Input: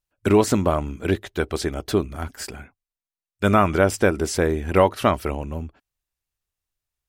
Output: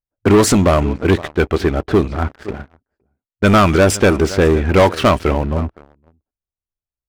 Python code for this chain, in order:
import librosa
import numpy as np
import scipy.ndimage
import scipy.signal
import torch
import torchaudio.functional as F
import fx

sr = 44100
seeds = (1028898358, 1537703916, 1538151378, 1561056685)

y = x + 10.0 ** (-21.5 / 20.0) * np.pad(x, (int(515 * sr / 1000.0), 0))[:len(x)]
y = fx.env_lowpass(y, sr, base_hz=770.0, full_db=-13.5)
y = fx.leveller(y, sr, passes=3)